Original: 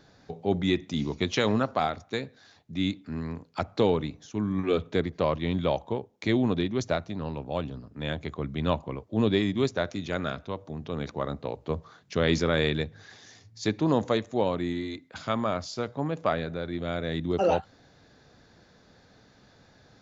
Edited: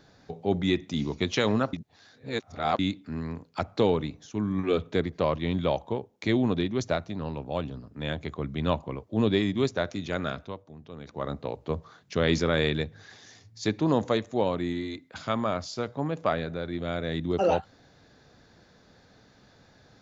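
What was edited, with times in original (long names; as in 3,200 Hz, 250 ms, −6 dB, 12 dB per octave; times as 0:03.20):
0:01.73–0:02.79: reverse
0:10.40–0:11.29: duck −10 dB, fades 0.24 s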